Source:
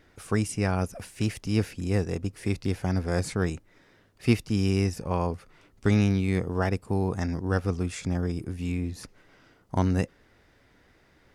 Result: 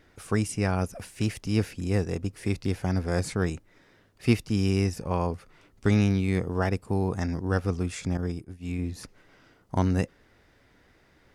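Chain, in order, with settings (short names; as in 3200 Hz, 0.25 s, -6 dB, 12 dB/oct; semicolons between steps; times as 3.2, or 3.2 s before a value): 8.17–8.79 expander -25 dBFS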